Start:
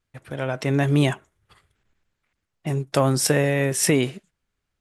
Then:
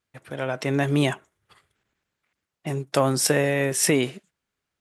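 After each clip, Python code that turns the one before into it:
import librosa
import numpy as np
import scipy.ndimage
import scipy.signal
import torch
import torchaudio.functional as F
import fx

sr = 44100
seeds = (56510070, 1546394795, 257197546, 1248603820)

y = fx.highpass(x, sr, hz=190.0, slope=6)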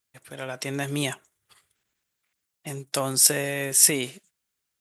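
y = F.preemphasis(torch.from_numpy(x), 0.8).numpy()
y = y * librosa.db_to_amplitude(6.5)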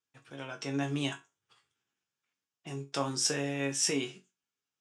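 y = fx.cabinet(x, sr, low_hz=130.0, low_slope=12, high_hz=6400.0, hz=(590.0, 2000.0, 4200.0), db=(-7, -7, -8))
y = fx.resonator_bank(y, sr, root=42, chord='major', decay_s=0.22)
y = y * librosa.db_to_amplitude(6.5)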